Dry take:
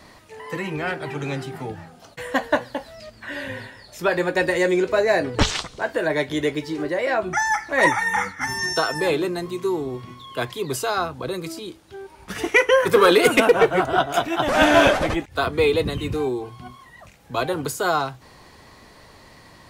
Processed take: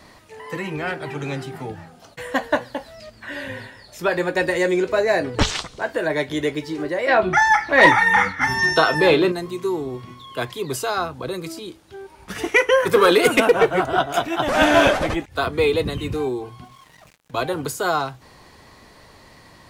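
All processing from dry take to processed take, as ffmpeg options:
-filter_complex "[0:a]asettb=1/sr,asplit=3[a][b][c];[a]atrim=end=7.084[d];[b]atrim=start=7.08:end=9.32,asetpts=PTS-STARTPTS,afade=t=in:d=0.004:c=qsin,afade=t=out:st=2.236:d=0.004:c=qsin,highshelf=f=5.2k:t=q:w=1.5:g=-8.5,acontrast=48,asplit=2[e][f];[f]adelay=32,volume=-13dB[g];[e][g]amix=inputs=2:normalize=0,atrim=end_sample=98784[h];[c]atrim=start=9.316[i];[d][h]acrossfade=d=0.004:c1=hsin:c2=qsin[j];[j][i]acrossfade=d=0.004:c1=qsin:c2=hsin,asettb=1/sr,asplit=3[k][l][m];[k]atrim=end=16.644[n];[l]atrim=start=16.64:end=17.34,asetpts=PTS-STARTPTS,afade=t=in:d=0.004:c=qsin,afade=t=out:st=0.696:d=0.004:c=qsin,aecho=1:1:6.5:0.64,atrim=end_sample=30870,acrusher=bits=6:mix=0:aa=0.5,acompressor=threshold=-44dB:ratio=4:attack=3.2:release=140:knee=1:detection=peak[o];[m]atrim=start=17.336[p];[n][o]acrossfade=d=0.004:c1=hsin:c2=qsin[q];[q][p]acrossfade=d=0.004:c1=qsin:c2=hsin"

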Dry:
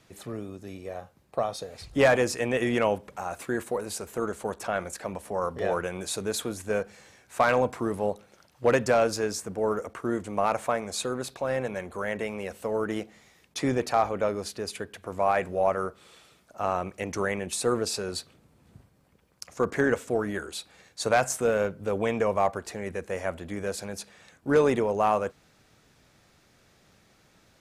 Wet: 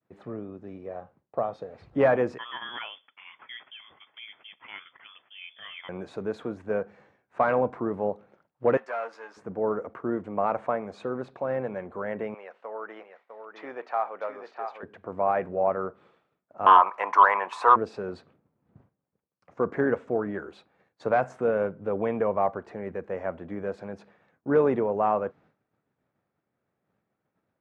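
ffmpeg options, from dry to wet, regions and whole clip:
-filter_complex "[0:a]asettb=1/sr,asplit=3[a][b][c];[a]atrim=end=2.384[d];[b]atrim=start=2.38:end=5.89,asetpts=PTS-STARTPTS,afade=t=in:d=0.004:c=qsin,afade=t=out:st=3.506:d=0.004:c=qsin,highpass=120,equalizer=f=660:t=o:w=0.57:g=-12,lowpass=f=3.1k:t=q:w=0.5098,lowpass=f=3.1k:t=q:w=0.6013,lowpass=f=3.1k:t=q:w=0.9,lowpass=f=3.1k:t=q:w=2.563,afreqshift=-3600[e];[c]atrim=start=5.886[f];[d][e]acrossfade=d=0.004:c1=hsin:c2=qsin[g];[g][f]acrossfade=d=0.004:c1=qsin:c2=hsin,asettb=1/sr,asplit=3[h][i][j];[h]atrim=end=8.774[k];[i]atrim=start=8.77:end=9.37,asetpts=PTS-STARTPTS,afade=t=in:d=0.004:c=qsin,afade=t=out:st=0.596:d=0.004:c=qsin,aeval=exprs='if(lt(val(0),0),0.447*val(0),val(0))':c=same,highpass=970,asplit=2[l][m];[m]adelay=13,volume=-7dB[n];[l][n]amix=inputs=2:normalize=0,atrim=end_sample=26460[o];[j]atrim=start=9.366[p];[k][o]acrossfade=d=0.004:c1=hsin:c2=qsin[q];[q][p]acrossfade=d=0.004:c1=qsin:c2=hsin,asettb=1/sr,asplit=3[r][s][t];[r]atrim=end=12.344[u];[s]atrim=start=12.34:end=14.83,asetpts=PTS-STARTPTS,afade=t=in:d=0.004:c=qsin,afade=t=out:st=2.486:d=0.004:c=qsin,highpass=800,lowpass=4.9k,aecho=1:1:652:0.422,atrim=end_sample=109809[v];[t]atrim=start=14.826[w];[u][v]acrossfade=d=0.004:c1=hsin:c2=qsin[x];[x][w]acrossfade=d=0.004:c1=qsin:c2=hsin,asettb=1/sr,asplit=3[y][z][aa];[y]atrim=end=16.664[ab];[z]atrim=start=16.66:end=17.76,asetpts=PTS-STARTPTS,afade=t=in:d=0.004:c=qsin,afade=t=out:st=1.096:d=0.004:c=qsin,highpass=f=1k:t=q:w=9.3,aeval=exprs='0.501*sin(PI/2*2*val(0)/0.501)':c=same[ac];[aa]atrim=start=17.756[ad];[ab][ac]acrossfade=d=0.004:c1=hsin:c2=qsin[ae];[ae][ad]acrossfade=d=0.004:c1=qsin:c2=hsin,lowpass=1.4k,agate=range=-33dB:threshold=-52dB:ratio=3:detection=peak,highpass=120"

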